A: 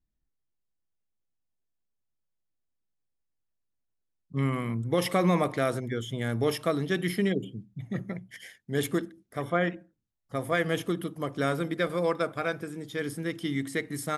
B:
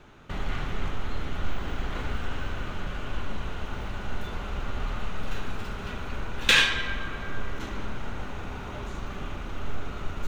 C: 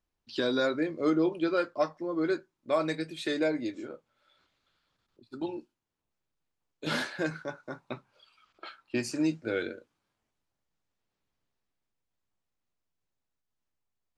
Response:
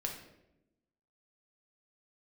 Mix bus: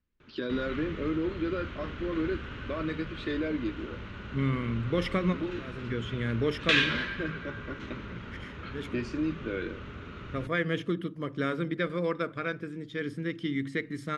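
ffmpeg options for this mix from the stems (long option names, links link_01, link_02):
-filter_complex "[0:a]volume=0.5dB[link_01];[1:a]highpass=61,adelay=200,volume=-2.5dB[link_02];[2:a]highshelf=frequency=4600:gain=-9.5,alimiter=limit=-24dB:level=0:latency=1,volume=2.5dB,asplit=2[link_03][link_04];[link_04]apad=whole_len=624986[link_05];[link_01][link_05]sidechaincompress=threshold=-55dB:ratio=4:attack=9.6:release=224[link_06];[link_06][link_02][link_03]amix=inputs=3:normalize=0,lowpass=3400,equalizer=frequency=760:width_type=o:width=0.63:gain=-15,bandreject=frequency=46.83:width_type=h:width=4,bandreject=frequency=93.66:width_type=h:width=4,bandreject=frequency=140.49:width_type=h:width=4"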